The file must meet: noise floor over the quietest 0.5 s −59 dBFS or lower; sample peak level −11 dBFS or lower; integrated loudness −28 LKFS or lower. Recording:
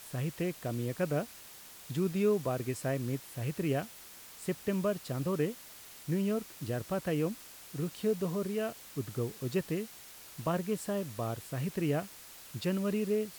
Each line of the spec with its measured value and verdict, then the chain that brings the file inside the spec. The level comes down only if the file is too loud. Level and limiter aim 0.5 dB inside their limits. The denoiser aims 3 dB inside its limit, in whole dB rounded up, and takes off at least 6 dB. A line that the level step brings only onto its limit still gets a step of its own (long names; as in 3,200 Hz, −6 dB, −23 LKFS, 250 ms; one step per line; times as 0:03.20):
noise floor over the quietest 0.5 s −51 dBFS: out of spec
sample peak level −18.5 dBFS: in spec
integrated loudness −34.5 LKFS: in spec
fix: broadband denoise 11 dB, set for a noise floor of −51 dBFS